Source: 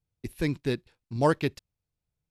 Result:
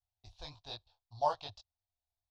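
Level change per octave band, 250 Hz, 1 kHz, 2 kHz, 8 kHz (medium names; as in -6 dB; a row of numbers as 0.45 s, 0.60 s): -31.0 dB, -3.0 dB, -20.0 dB, under -10 dB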